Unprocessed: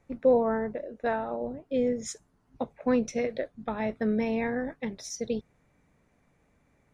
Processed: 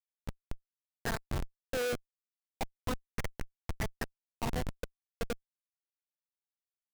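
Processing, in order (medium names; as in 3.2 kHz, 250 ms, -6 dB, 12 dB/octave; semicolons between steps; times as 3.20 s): repeats whose band climbs or falls 249 ms, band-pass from 1.2 kHz, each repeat 0.7 oct, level -3 dB; wah-wah 0.35 Hz 560–2300 Hz, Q 5.3; Schmitt trigger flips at -37.5 dBFS; trim +15 dB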